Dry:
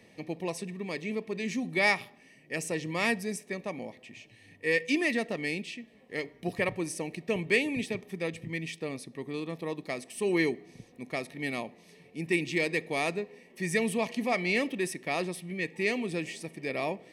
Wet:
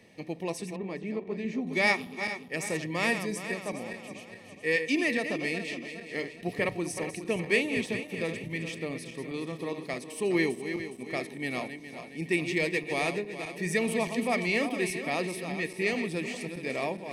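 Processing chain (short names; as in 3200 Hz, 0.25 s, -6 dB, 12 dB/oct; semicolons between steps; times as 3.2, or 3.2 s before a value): regenerating reverse delay 0.207 s, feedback 67%, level -8.5 dB; 0.76–1.67 LPF 1200 Hz 6 dB/oct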